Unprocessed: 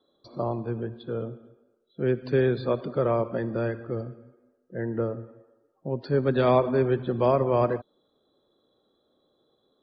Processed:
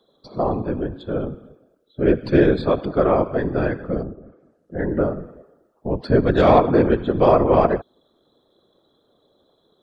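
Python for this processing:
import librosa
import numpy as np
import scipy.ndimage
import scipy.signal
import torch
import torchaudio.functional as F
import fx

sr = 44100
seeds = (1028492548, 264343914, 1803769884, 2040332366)

y = fx.tracing_dist(x, sr, depth_ms=0.027)
y = fx.whisperise(y, sr, seeds[0])
y = fx.env_lowpass_down(y, sr, base_hz=880.0, full_db=-35.0, at=(4.02, 4.76), fade=0.02)
y = y * 10.0 ** (7.0 / 20.0)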